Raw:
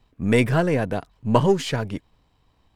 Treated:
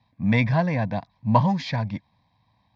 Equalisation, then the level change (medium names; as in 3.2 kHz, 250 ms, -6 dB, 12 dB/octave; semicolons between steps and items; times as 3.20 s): cabinet simulation 110–5100 Hz, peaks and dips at 110 Hz +7 dB, 1 kHz +4 dB, 3.1 kHz +8 dB; peaking EQ 200 Hz +5.5 dB 0.43 oct; static phaser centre 2 kHz, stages 8; 0.0 dB